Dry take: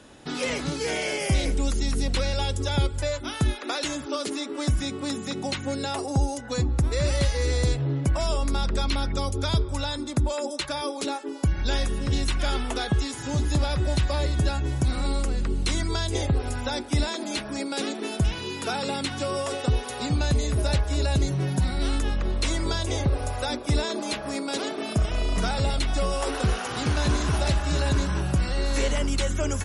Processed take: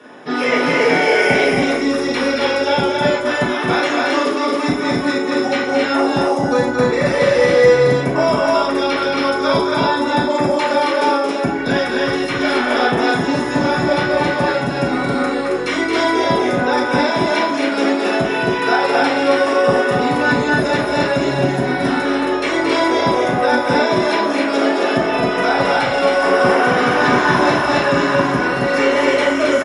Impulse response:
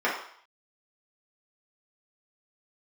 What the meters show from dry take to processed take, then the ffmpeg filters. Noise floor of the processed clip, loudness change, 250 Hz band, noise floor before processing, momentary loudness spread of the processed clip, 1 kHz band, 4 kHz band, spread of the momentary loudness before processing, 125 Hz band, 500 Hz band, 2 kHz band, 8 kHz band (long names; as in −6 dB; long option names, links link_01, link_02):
−21 dBFS, +11.0 dB, +12.0 dB, −35 dBFS, 4 LU, +16.5 dB, +7.0 dB, 5 LU, −1.0 dB, +16.0 dB, +17.0 dB, 0.0 dB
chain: -filter_complex "[0:a]aecho=1:1:224.5|271.1:0.562|0.794[link_01];[1:a]atrim=start_sample=2205[link_02];[link_01][link_02]afir=irnorm=-1:irlink=0,volume=-1.5dB"